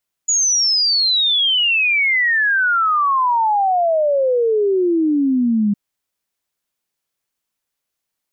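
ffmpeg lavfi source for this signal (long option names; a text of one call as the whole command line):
ffmpeg -f lavfi -i "aevalsrc='0.224*clip(min(t,5.46-t)/0.01,0,1)*sin(2*PI*6900*5.46/log(200/6900)*(exp(log(200/6900)*t/5.46)-1))':duration=5.46:sample_rate=44100" out.wav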